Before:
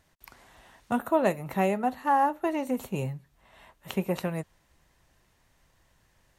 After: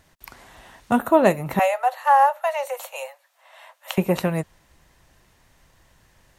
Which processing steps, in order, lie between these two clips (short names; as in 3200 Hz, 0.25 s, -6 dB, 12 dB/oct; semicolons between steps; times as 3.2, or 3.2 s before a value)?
1.59–3.98 steep high-pass 520 Hz 96 dB/oct; gain +8 dB